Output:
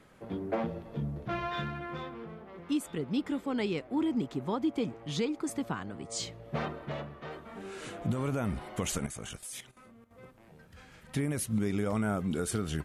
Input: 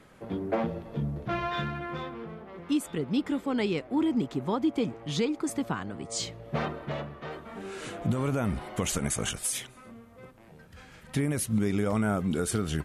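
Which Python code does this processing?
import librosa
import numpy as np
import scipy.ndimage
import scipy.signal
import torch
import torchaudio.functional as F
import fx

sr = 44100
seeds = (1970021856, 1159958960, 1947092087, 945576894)

y = fx.level_steps(x, sr, step_db=13, at=(9.06, 10.11))
y = y * librosa.db_to_amplitude(-3.5)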